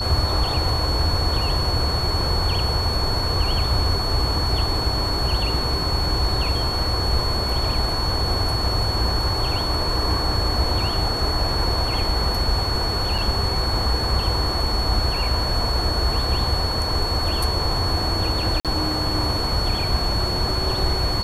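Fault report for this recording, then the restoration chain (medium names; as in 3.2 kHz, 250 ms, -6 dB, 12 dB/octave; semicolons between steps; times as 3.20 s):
whine 4.4 kHz -25 dBFS
13.18–13.19 s: dropout 5.3 ms
18.60–18.65 s: dropout 47 ms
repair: band-stop 4.4 kHz, Q 30; interpolate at 13.18 s, 5.3 ms; interpolate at 18.60 s, 47 ms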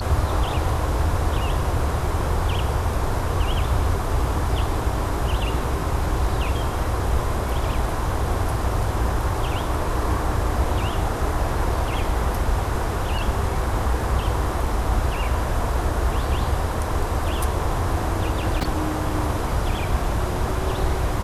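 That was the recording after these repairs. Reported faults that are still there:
nothing left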